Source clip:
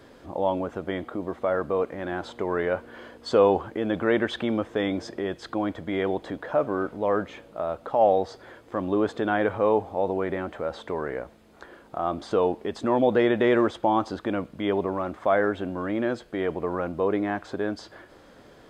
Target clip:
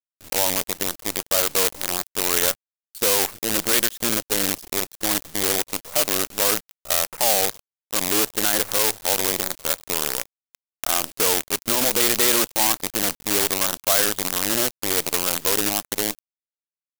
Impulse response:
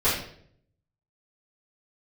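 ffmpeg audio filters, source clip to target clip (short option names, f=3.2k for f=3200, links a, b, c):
-af "afwtdn=0.0316,alimiter=limit=-15dB:level=0:latency=1:release=58,acrusher=bits=5:dc=4:mix=0:aa=0.000001,atempo=1.1,crystalizer=i=8.5:c=0,volume=-3dB"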